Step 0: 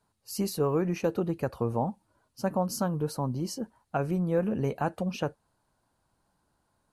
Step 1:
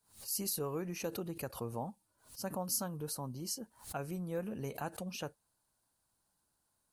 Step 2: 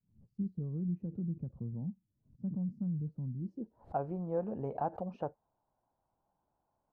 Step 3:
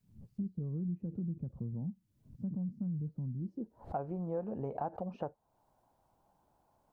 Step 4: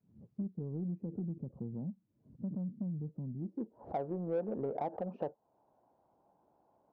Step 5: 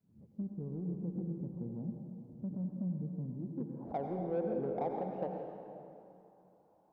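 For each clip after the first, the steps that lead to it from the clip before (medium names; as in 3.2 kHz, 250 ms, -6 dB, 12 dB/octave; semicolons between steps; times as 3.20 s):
pre-emphasis filter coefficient 0.8; swell ahead of each attack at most 150 dB/s; trim +2 dB
low-pass sweep 180 Hz -> 790 Hz, 3.36–3.96 s; trim +1 dB
compression 2:1, threshold -52 dBFS, peak gain reduction 12.5 dB; trim +9 dB
band-pass filter 420 Hz, Q 0.88; in parallel at -4 dB: saturation -39 dBFS, distortion -11 dB; on the sum: trim +1 dB
reverberation RT60 2.7 s, pre-delay 78 ms, DRR 2 dB; trim -1.5 dB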